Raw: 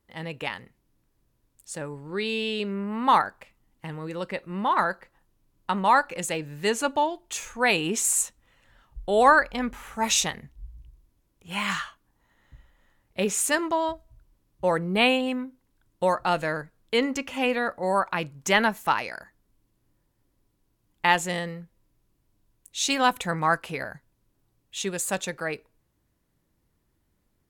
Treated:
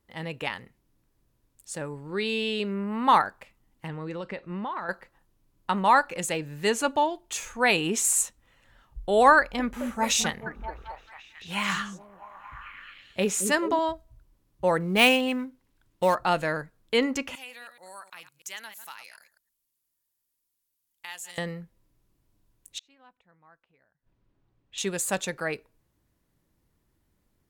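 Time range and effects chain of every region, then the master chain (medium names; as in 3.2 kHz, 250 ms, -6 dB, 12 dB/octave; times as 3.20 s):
3.88–4.89 s: distance through air 87 m + compression 12:1, threshold -29 dBFS
9.37–13.79 s: de-esser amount 40% + repeats whose band climbs or falls 218 ms, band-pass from 270 Hz, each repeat 0.7 oct, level -3 dB
14.80–16.15 s: dead-time distortion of 0.051 ms + peaking EQ 2.6 kHz +3.5 dB 1.5 oct
17.35–21.38 s: chunks repeated in reverse 107 ms, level -13.5 dB + pre-emphasis filter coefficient 0.97 + compression 1.5:1, threshold -46 dBFS
22.78–24.78 s: low-pass 3.1 kHz + inverted gate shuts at -29 dBFS, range -35 dB
whole clip: none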